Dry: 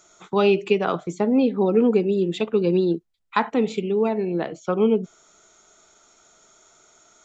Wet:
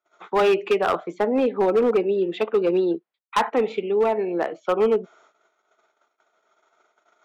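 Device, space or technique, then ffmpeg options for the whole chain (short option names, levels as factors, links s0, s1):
walkie-talkie: -af "highpass=460,lowpass=2200,asoftclip=type=hard:threshold=0.106,agate=range=0.0355:threshold=0.00112:ratio=16:detection=peak,volume=1.88"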